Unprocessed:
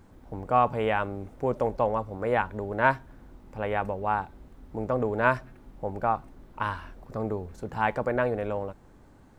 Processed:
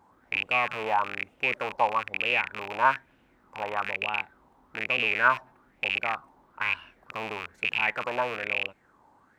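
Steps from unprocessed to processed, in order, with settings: rattling part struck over -37 dBFS, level -17 dBFS; HPF 220 Hz 6 dB/oct; LFO bell 1.1 Hz 880–2800 Hz +17 dB; gain -8.5 dB

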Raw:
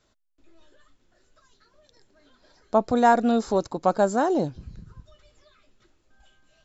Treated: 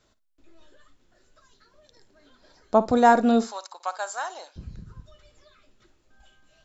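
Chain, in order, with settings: 3.44–4.56 Bessel high-pass 1300 Hz, order 4; flutter echo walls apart 9.6 m, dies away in 0.21 s; gain +1.5 dB

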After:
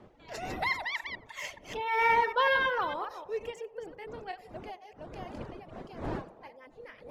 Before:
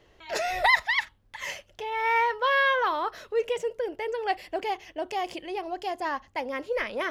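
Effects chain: reverse delay 0.149 s, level -6 dB; Doppler pass-by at 2.09, 12 m/s, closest 5.9 m; wind noise 540 Hz -45 dBFS; reverb removal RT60 0.76 s; on a send: narrowing echo 91 ms, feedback 78%, band-pass 630 Hz, level -16 dB

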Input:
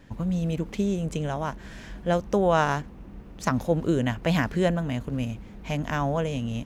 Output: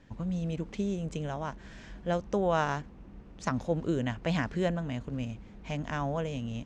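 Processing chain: LPF 7900 Hz 24 dB/oct; gain -6 dB

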